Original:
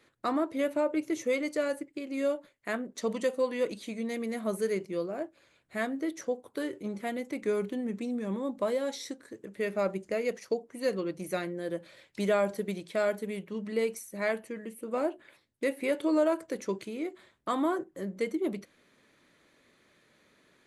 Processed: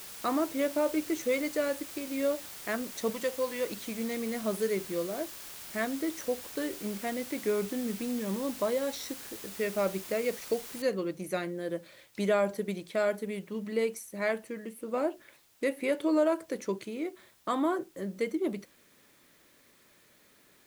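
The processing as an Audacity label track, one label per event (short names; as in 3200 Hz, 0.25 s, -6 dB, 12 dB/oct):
3.100000	3.710000	low shelf 440 Hz -7 dB
10.820000	10.820000	noise floor step -45 dB -65 dB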